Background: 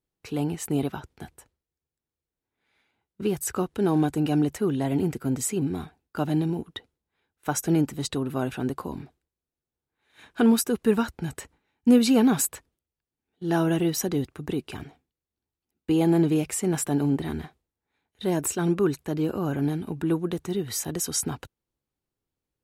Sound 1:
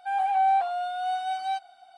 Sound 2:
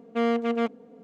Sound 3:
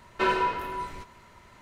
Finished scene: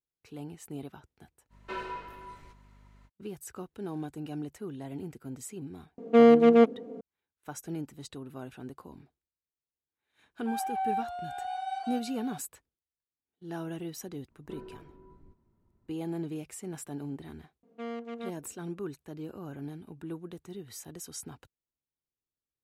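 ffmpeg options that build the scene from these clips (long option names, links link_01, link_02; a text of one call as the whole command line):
ffmpeg -i bed.wav -i cue0.wav -i cue1.wav -i cue2.wav -filter_complex "[3:a]asplit=2[link_01][link_02];[2:a]asplit=2[link_03][link_04];[0:a]volume=-14.5dB[link_05];[link_01]aeval=exprs='val(0)+0.00708*(sin(2*PI*50*n/s)+sin(2*PI*2*50*n/s)/2+sin(2*PI*3*50*n/s)/3+sin(2*PI*4*50*n/s)/4+sin(2*PI*5*50*n/s)/5)':channel_layout=same[link_06];[link_03]equalizer=frequency=370:width_type=o:width=1.7:gain=10[link_07];[1:a]aecho=1:1:812:0.422[link_08];[link_02]firequalizer=gain_entry='entry(330,0);entry(520,-13);entry(2100,-28)':delay=0.05:min_phase=1[link_09];[link_06]atrim=end=1.61,asetpts=PTS-STARTPTS,volume=-13dB,afade=type=in:duration=0.05,afade=type=out:start_time=1.56:duration=0.05,adelay=1490[link_10];[link_07]atrim=end=1.03,asetpts=PTS-STARTPTS,afade=type=in:duration=0.004:curve=hsin,afade=type=out:start_time=1.026:duration=0.004:curve=hsin,adelay=5980[link_11];[link_08]atrim=end=1.97,asetpts=PTS-STARTPTS,volume=-9dB,afade=type=in:duration=0.004:curve=hsin,afade=type=out:start_time=1.966:duration=0.004:curve=hsin,adelay=10410[link_12];[link_09]atrim=end=1.61,asetpts=PTS-STARTPTS,volume=-12dB,afade=type=in:duration=0.004:curve=hsin,afade=type=out:start_time=1.606:duration=0.004:curve=hsin,adelay=14300[link_13];[link_04]atrim=end=1.03,asetpts=PTS-STARTPTS,volume=-14dB,afade=type=in:duration=0.004:curve=hsin,afade=type=out:start_time=1.026:duration=0.004:curve=hsin,adelay=17630[link_14];[link_05][link_10][link_11][link_12][link_13][link_14]amix=inputs=6:normalize=0" out.wav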